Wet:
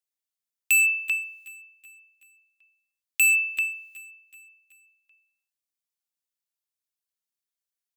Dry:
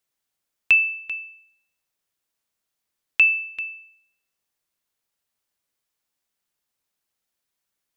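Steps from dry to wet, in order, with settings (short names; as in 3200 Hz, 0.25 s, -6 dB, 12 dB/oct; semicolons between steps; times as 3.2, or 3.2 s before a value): hard clip -23 dBFS, distortion -4 dB; gate -57 dBFS, range -18 dB; high shelf 2500 Hz +10 dB; feedback echo 0.377 s, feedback 51%, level -20.5 dB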